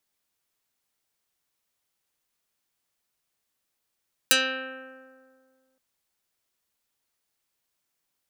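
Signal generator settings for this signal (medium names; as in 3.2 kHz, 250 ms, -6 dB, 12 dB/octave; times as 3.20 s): plucked string C4, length 1.47 s, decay 2.05 s, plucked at 0.24, dark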